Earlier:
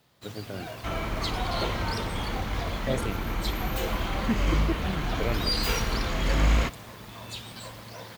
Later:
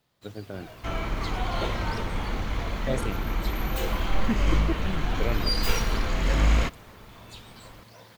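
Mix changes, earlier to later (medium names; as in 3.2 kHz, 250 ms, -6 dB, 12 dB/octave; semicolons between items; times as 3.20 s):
first sound -8.0 dB; master: remove high-pass 40 Hz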